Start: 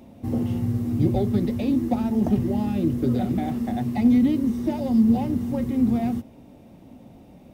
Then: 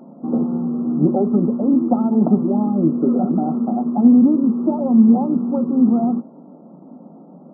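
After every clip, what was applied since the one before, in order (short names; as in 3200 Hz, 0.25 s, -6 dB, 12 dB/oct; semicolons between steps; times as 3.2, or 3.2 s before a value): FFT band-pass 150–1400 Hz; gain +6.5 dB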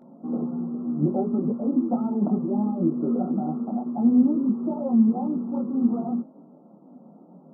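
detuned doubles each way 23 cents; gain -4 dB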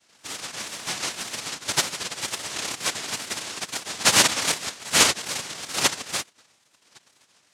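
sine-wave speech; noise vocoder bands 1; wow and flutter 98 cents; gain -3 dB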